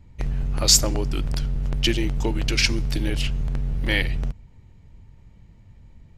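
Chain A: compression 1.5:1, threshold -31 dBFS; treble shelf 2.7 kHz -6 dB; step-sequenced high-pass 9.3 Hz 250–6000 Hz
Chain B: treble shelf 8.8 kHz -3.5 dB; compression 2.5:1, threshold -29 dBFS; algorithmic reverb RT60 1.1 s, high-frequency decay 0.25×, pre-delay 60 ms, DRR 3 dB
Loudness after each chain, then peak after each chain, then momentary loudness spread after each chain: -32.0 LUFS, -29.5 LUFS; -13.5 dBFS, -12.5 dBFS; 17 LU, 22 LU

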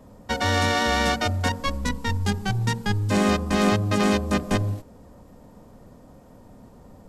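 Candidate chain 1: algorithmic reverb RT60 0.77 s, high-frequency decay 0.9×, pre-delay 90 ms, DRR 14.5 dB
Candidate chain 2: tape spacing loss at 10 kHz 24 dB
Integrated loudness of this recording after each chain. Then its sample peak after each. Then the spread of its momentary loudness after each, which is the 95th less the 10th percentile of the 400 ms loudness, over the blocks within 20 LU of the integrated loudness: -23.5 LUFS, -25.5 LUFS; -8.5 dBFS, -9.5 dBFS; 6 LU, 7 LU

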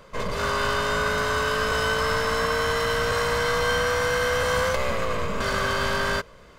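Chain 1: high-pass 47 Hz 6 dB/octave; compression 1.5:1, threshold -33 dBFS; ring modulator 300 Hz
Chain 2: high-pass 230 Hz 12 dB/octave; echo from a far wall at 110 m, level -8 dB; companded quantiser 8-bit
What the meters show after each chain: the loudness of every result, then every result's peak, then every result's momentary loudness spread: -31.5 LUFS, -24.0 LUFS; -17.0 dBFS, -10.0 dBFS; 3 LU, 4 LU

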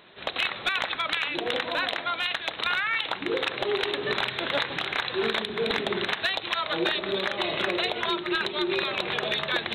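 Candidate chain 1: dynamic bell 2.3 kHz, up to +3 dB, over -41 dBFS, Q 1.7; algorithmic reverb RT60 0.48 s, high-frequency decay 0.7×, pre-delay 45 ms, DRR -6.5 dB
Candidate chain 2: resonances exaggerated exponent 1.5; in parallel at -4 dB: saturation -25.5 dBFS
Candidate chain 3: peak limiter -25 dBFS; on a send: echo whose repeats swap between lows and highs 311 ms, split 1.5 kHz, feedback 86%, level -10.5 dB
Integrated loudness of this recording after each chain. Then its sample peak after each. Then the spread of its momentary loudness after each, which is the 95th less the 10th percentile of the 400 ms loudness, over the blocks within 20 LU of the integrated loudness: -18.5 LUFS, -24.0 LUFS, -32.5 LUFS; -4.0 dBFS, -13.0 dBFS, -21.5 dBFS; 2 LU, 2 LU, 1 LU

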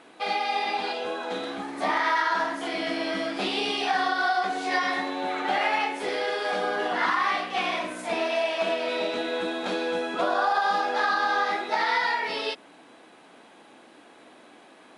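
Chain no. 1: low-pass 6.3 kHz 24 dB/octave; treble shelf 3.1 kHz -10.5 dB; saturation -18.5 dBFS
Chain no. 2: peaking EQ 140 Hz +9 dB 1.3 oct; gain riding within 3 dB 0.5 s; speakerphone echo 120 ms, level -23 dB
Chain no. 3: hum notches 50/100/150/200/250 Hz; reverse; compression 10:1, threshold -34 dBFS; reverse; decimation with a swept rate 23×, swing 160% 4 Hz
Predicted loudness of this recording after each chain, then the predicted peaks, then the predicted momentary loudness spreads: -29.0 LUFS, -26.0 LUFS, -37.5 LUFS; -19.0 dBFS, -12.5 dBFS, -24.0 dBFS; 6 LU, 3 LU, 15 LU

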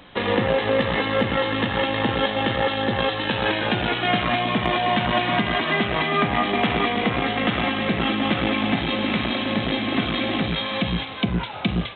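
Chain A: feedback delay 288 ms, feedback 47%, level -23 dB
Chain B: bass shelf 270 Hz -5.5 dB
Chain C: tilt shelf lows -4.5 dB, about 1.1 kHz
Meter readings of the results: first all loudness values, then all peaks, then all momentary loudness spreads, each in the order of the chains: -22.0 LUFS, -23.0 LUFS, -21.5 LUFS; -8.0 dBFS, -8.5 dBFS, -6.5 dBFS; 3 LU, 3 LU, 3 LU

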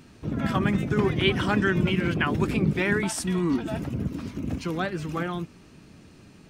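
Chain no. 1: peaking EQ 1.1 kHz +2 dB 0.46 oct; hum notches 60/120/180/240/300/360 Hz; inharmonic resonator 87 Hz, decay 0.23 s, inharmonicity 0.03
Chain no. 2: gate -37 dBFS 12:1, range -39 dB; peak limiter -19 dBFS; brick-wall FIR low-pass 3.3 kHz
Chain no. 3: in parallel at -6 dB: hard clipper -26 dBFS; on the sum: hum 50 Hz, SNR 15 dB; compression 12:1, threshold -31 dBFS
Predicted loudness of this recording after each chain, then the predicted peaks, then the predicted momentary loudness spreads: -34.0 LUFS, -29.0 LUFS, -35.5 LUFS; -18.5 dBFS, -18.5 dBFS, -23.0 dBFS; 10 LU, 5 LU, 7 LU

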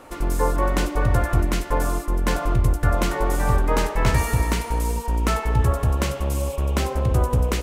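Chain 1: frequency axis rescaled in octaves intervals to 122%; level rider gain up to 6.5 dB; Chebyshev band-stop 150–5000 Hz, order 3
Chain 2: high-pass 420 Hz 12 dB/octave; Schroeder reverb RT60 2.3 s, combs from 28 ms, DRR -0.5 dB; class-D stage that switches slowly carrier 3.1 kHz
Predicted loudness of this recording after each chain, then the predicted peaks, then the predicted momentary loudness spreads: -23.5 LUFS, -25.5 LUFS; -5.5 dBFS, -11.0 dBFS; 6 LU, 4 LU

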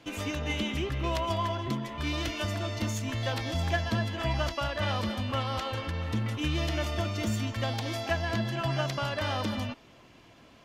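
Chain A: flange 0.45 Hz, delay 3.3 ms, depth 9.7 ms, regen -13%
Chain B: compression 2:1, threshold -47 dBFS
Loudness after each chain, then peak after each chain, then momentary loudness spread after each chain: -34.5 LUFS, -41.5 LUFS; -20.0 dBFS, -27.5 dBFS; 4 LU, 2 LU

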